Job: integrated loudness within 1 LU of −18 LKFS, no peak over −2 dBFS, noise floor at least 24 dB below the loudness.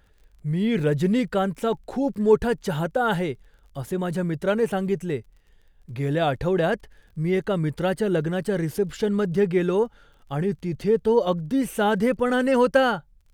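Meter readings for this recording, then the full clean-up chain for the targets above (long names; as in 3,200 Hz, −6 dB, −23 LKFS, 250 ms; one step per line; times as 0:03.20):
crackle rate 23 per second; integrated loudness −24.0 LKFS; sample peak −6.5 dBFS; target loudness −18.0 LKFS
→ click removal
level +6 dB
brickwall limiter −2 dBFS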